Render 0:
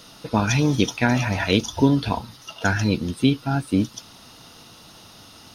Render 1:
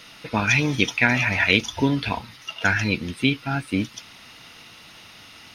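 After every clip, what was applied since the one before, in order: bell 2200 Hz +15 dB 1 oct; gain -4 dB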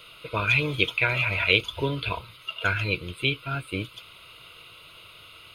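fixed phaser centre 1200 Hz, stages 8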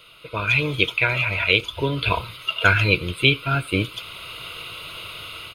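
speakerphone echo 90 ms, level -25 dB; AGC gain up to 13.5 dB; gain -1 dB

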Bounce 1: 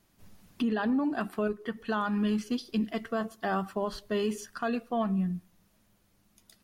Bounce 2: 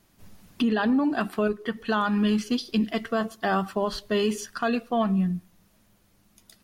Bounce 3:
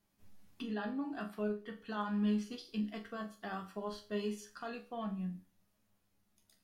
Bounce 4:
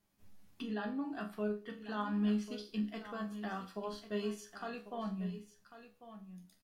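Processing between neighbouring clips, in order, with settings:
dynamic EQ 3800 Hz, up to +4 dB, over -52 dBFS, Q 0.82; gain +5 dB
resonator bank C#2 sus4, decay 0.31 s; gain -4.5 dB
echo 1.095 s -12.5 dB

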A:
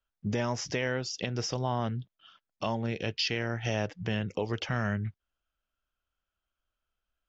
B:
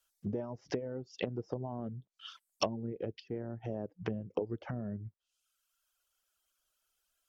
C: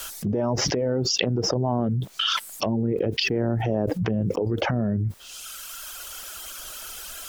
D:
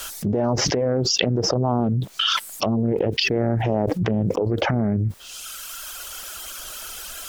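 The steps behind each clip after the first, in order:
treble ducked by the level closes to 330 Hz, closed at -28.5 dBFS; reverb removal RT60 0.98 s; tone controls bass -12 dB, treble +15 dB; gain +4.5 dB
fast leveller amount 100%; gain +3 dB
Doppler distortion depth 0.28 ms; gain +3 dB

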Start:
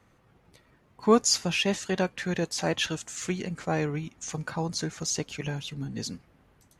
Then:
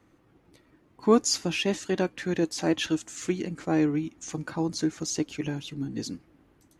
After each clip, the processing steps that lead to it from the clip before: bell 310 Hz +13.5 dB 0.46 oct; gain -2.5 dB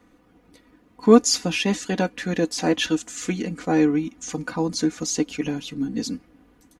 comb 4.1 ms, depth 64%; gain +4 dB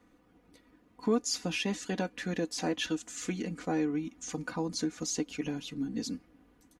compressor 2:1, threshold -23 dBFS, peak gain reduction 9 dB; gain -7 dB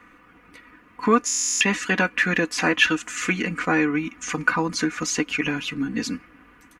band shelf 1700 Hz +13 dB; stuck buffer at 1.26, samples 1024, times 14; gain +8 dB

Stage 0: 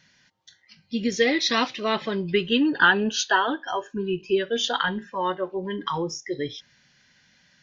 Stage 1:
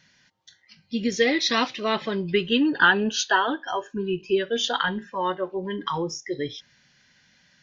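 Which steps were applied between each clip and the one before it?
nothing audible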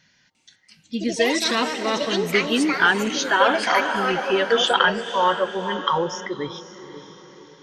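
diffused feedback echo 0.525 s, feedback 49%, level -11 dB; echoes that change speed 0.349 s, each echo +6 st, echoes 2, each echo -6 dB; spectral gain 3.41–6.27, 450–3500 Hz +7 dB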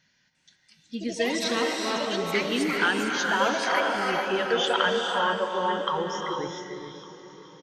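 echo 1.158 s -23.5 dB; non-linear reverb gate 0.48 s rising, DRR 2 dB; gain -7 dB

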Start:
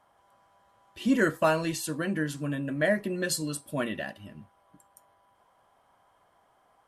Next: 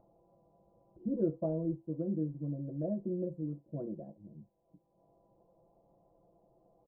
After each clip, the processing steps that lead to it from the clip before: inverse Chebyshev low-pass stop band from 1900 Hz, stop band 60 dB; comb 5.9 ms, depth 79%; upward compressor, threshold -48 dBFS; gain -7.5 dB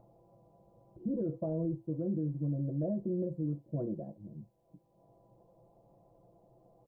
limiter -30.5 dBFS, peak gain reduction 11 dB; bell 120 Hz +9 dB 0.32 oct; gain +3.5 dB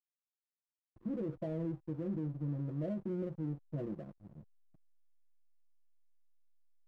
backlash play -43 dBFS; gain -3.5 dB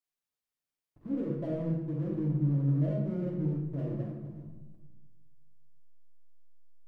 reverb RT60 1.2 s, pre-delay 7 ms, DRR -2.5 dB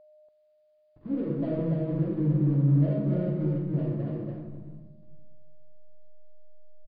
whine 610 Hz -57 dBFS; echo 0.286 s -3 dB; gain +3.5 dB; MP3 64 kbps 11025 Hz

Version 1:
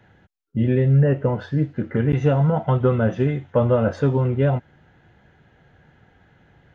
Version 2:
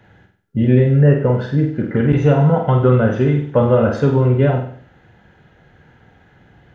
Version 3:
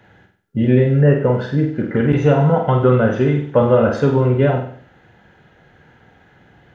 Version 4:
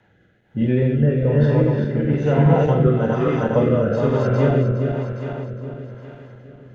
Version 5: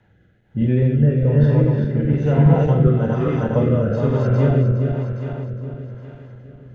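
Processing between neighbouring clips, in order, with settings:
flutter echo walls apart 8.2 m, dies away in 0.52 s; gain +4 dB
low shelf 150 Hz -6.5 dB; gain +1.5 dB
regenerating reverse delay 0.205 s, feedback 74%, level -2 dB; rotary speaker horn 1.1 Hz; gain -4.5 dB
low shelf 150 Hz +11.5 dB; gain -3.5 dB

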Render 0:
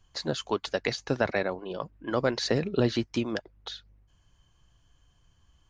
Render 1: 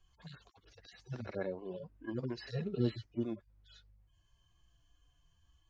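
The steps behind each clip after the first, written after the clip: median-filter separation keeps harmonic; gain -5 dB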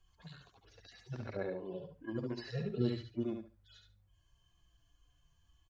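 feedback echo 71 ms, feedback 20%, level -5.5 dB; gain -1 dB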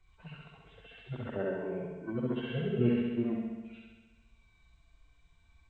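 nonlinear frequency compression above 1300 Hz 1.5:1; flutter echo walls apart 11.4 m, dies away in 1.3 s; gain +3.5 dB

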